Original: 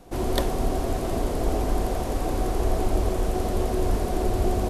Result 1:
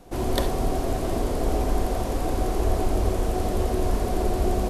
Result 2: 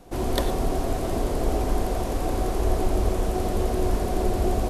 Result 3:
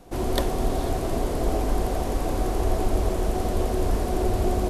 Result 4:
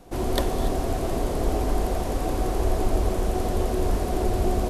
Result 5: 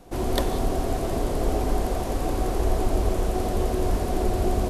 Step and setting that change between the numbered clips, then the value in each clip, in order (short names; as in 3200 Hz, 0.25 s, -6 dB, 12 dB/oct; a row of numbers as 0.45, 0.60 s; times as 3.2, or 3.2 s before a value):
non-linear reverb, gate: 90, 130, 520, 310, 210 ms